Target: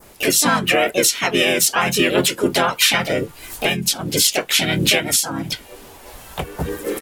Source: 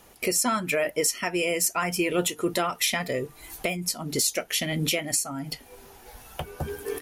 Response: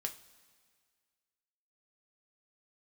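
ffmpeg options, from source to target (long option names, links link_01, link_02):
-filter_complex "[0:a]asplit=4[link_01][link_02][link_03][link_04];[link_02]asetrate=22050,aresample=44100,atempo=2,volume=-15dB[link_05];[link_03]asetrate=33038,aresample=44100,atempo=1.33484,volume=-3dB[link_06];[link_04]asetrate=52444,aresample=44100,atempo=0.840896,volume=-2dB[link_07];[link_01][link_05][link_06][link_07]amix=inputs=4:normalize=0,adynamicequalizer=threshold=0.0141:dfrequency=3100:dqfactor=1.2:tfrequency=3100:tqfactor=1.2:attack=5:release=100:ratio=0.375:range=2.5:mode=boostabove:tftype=bell,volume=4.5dB"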